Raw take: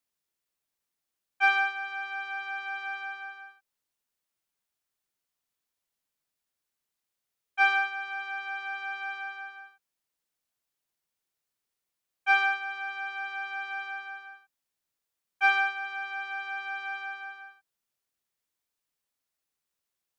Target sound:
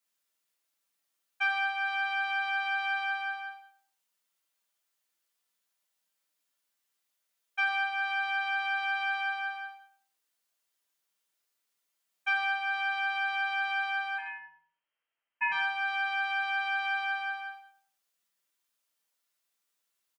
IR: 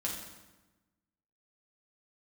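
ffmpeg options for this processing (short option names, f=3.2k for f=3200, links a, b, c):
-filter_complex "[0:a]acompressor=threshold=-32dB:ratio=6,asettb=1/sr,asplit=3[a][b][c];[a]atrim=end=14.184[d];[b]atrim=start=14.18:end=15.52,asetpts=PTS-STARTPTS,afade=t=in:d=0.004:c=qsin,afade=t=out:st=1.336:d=0.004:c=qsin,lowpass=f=2.8k:t=q:w=0.5098,lowpass=f=2.8k:t=q:w=0.6013,lowpass=f=2.8k:t=q:w=0.9,lowpass=f=2.8k:t=q:w=2.563,afreqshift=-3300[e];[c]atrim=start=15.516[f];[d][e]acrossfade=d=0.004:c1=hsin:c2=qsin[g];[g][f]acrossfade=d=0.004:c1=qsin:c2=hsin,highpass=f=760:p=1,asplit=2[h][i];[i]adelay=98,lowpass=f=1k:p=1,volume=-7dB,asplit=2[j][k];[k]adelay=98,lowpass=f=1k:p=1,volume=0.38,asplit=2[l][m];[m]adelay=98,lowpass=f=1k:p=1,volume=0.38,asplit=2[n][o];[o]adelay=98,lowpass=f=1k:p=1,volume=0.38[p];[h][j][l][n][p]amix=inputs=5:normalize=0[q];[1:a]atrim=start_sample=2205,atrim=end_sample=6174[r];[q][r]afir=irnorm=-1:irlink=0,volume=2.5dB"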